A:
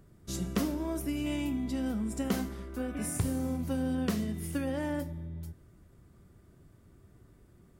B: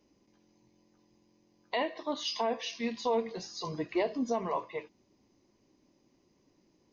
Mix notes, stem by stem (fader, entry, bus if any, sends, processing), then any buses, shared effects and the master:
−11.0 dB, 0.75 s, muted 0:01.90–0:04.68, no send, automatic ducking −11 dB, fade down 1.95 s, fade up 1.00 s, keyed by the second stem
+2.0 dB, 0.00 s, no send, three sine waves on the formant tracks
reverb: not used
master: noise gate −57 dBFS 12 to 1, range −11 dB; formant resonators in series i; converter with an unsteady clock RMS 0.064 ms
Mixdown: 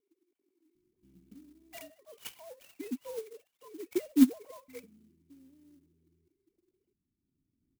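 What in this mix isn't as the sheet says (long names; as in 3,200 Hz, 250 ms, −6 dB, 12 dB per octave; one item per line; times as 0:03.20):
stem B +2.0 dB → +8.5 dB
master: missing noise gate −57 dBFS 12 to 1, range −11 dB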